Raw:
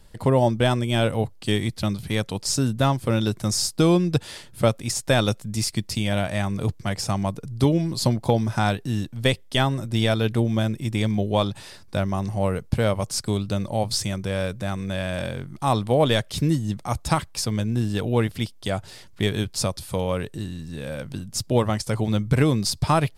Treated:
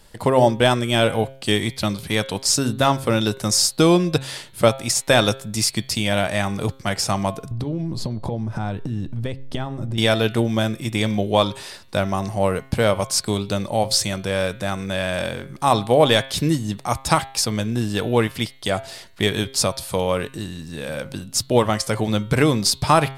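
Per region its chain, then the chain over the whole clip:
0:07.51–0:09.98: spectral tilt −3.5 dB per octave + downward compressor 12 to 1, threshold −22 dBFS
whole clip: low-shelf EQ 240 Hz −9 dB; hum removal 134.1 Hz, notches 33; level +6.5 dB

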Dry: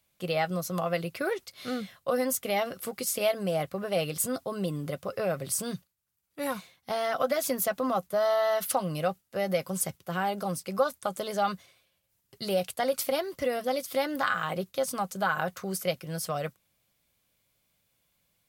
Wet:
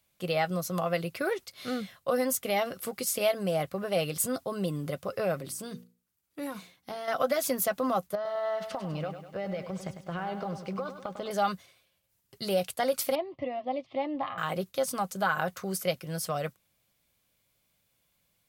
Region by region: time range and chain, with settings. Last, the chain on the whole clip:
0:05.37–0:07.08: downward compressor 2.5 to 1, threshold −38 dBFS + parametric band 300 Hz +7.5 dB 0.55 octaves + mains-hum notches 60/120/180/240/300/360/420/480 Hz
0:08.15–0:11.31: high-frequency loss of the air 180 metres + downward compressor 10 to 1, threshold −30 dBFS + feedback echo at a low word length 100 ms, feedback 55%, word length 10 bits, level −9.5 dB
0:13.15–0:14.38: low-pass filter 2,700 Hz 24 dB per octave + phaser with its sweep stopped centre 300 Hz, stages 8
whole clip: no processing

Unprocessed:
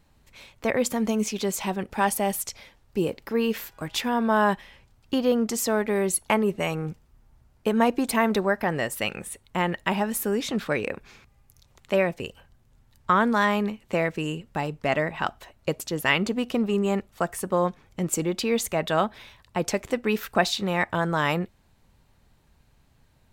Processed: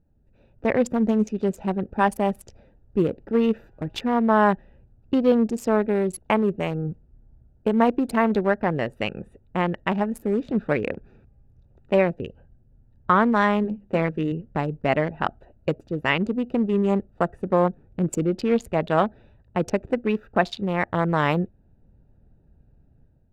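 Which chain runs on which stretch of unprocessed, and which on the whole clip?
0:13.63–0:14.32: mains-hum notches 50/100/150/200/250 Hz + double-tracking delay 13 ms −11 dB
whole clip: adaptive Wiener filter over 41 samples; automatic gain control gain up to 8 dB; low-pass filter 2,100 Hz 6 dB per octave; level −2.5 dB

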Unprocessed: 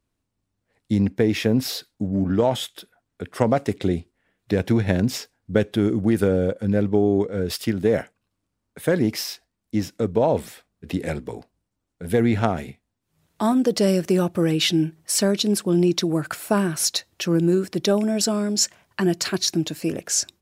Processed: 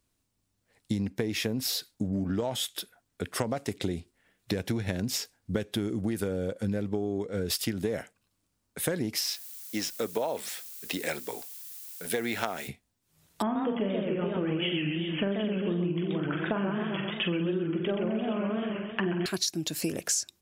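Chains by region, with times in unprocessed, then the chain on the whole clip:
0:09.20–0:12.67: meter weighting curve A + background noise blue −52 dBFS
0:13.42–0:19.26: linear-phase brick-wall low-pass 3,400 Hz + flutter between parallel walls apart 7.8 metres, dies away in 0.43 s + feedback echo with a swinging delay time 131 ms, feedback 50%, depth 185 cents, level −3 dB
whole clip: high-shelf EQ 3,200 Hz +9.5 dB; downward compressor 12 to 1, threshold −25 dBFS; level −1 dB

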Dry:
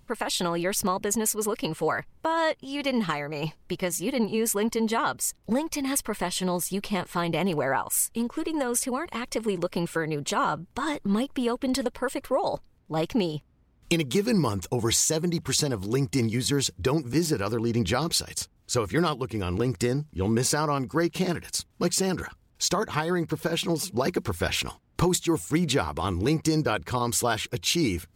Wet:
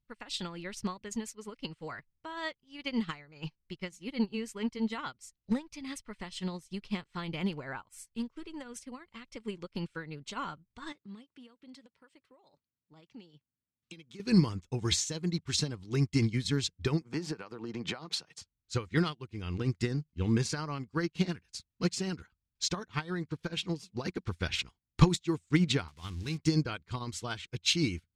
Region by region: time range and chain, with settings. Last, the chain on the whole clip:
0:10.92–0:14.20: high-pass filter 150 Hz + downward compressor 2.5 to 1, threshold −32 dBFS
0:17.01–0:18.41: high-pass filter 130 Hz 24 dB per octave + parametric band 800 Hz +13 dB 2.2 octaves + downward compressor 5 to 1, threshold −22 dBFS
0:25.88–0:26.38: spike at every zero crossing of −25.5 dBFS + parametric band 430 Hz −7.5 dB 2.3 octaves
whole clip: low-pass filter 5,100 Hz 12 dB per octave; parametric band 630 Hz −11.5 dB 2.2 octaves; expander for the loud parts 2.5 to 1, over −44 dBFS; level +8 dB

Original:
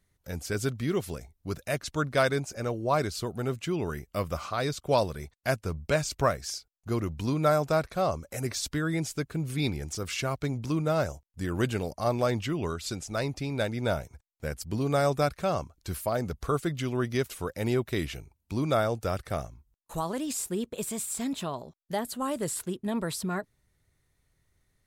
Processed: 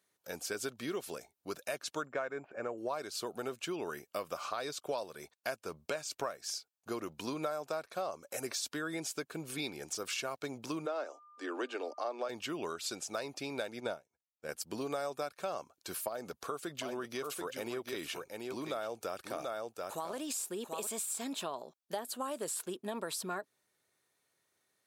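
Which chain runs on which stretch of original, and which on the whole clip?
0:02.06–0:02.78: bad sample-rate conversion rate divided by 6×, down filtered, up zero stuff + low-pass filter 2,300 Hz 24 dB per octave
0:10.85–0:12.28: Butterworth high-pass 250 Hz 72 dB per octave + high-frequency loss of the air 120 metres + steady tone 1,200 Hz −56 dBFS
0:13.80–0:14.49: low-pass filter 11,000 Hz + low-shelf EQ 410 Hz +4.5 dB + expander for the loud parts 2.5 to 1, over −39 dBFS
0:16.08–0:20.87: single-tap delay 735 ms −8.5 dB + downward compressor 2 to 1, threshold −31 dBFS
whole clip: high-pass filter 390 Hz 12 dB per octave; notch filter 2,000 Hz, Q 9; downward compressor 6 to 1, threshold −34 dBFS

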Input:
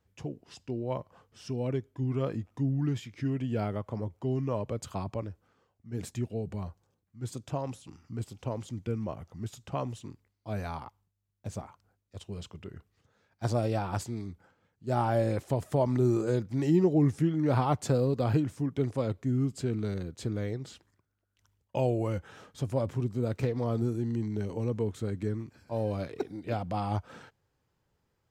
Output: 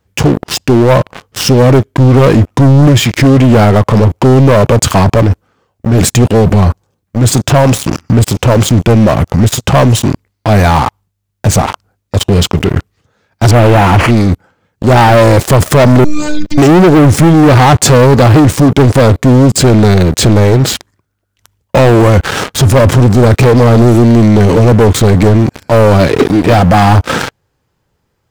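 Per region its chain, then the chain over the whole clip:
0:13.51–0:14.11: linear delta modulator 16 kbit/s, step −39.5 dBFS + one half of a high-frequency compander encoder only
0:16.04–0:16.58: drawn EQ curve 120 Hz 0 dB, 190 Hz −14 dB, 270 Hz −28 dB, 780 Hz −16 dB, 1,300 Hz −14 dB, 3,000 Hz −2 dB, 6,400 Hz −6 dB, 11,000 Hz −19 dB + phases set to zero 299 Hz
whole clip: leveller curve on the samples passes 5; boost into a limiter +24 dB; level −1 dB

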